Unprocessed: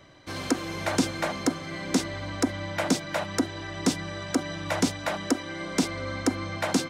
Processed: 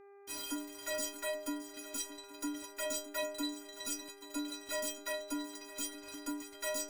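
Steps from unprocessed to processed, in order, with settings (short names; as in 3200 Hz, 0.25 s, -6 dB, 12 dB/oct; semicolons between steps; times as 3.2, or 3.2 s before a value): reverse delay 0.181 s, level -14 dB; pre-emphasis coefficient 0.8; reverb removal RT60 1.9 s; high shelf 3800 Hz +5 dB; fuzz box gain 46 dB, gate -44 dBFS; metallic resonator 290 Hz, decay 0.67 s, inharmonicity 0.03; buzz 400 Hz, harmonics 6, -54 dBFS -9 dB/oct; swung echo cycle 0.824 s, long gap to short 3:1, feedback 36%, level -15 dB; gain -3 dB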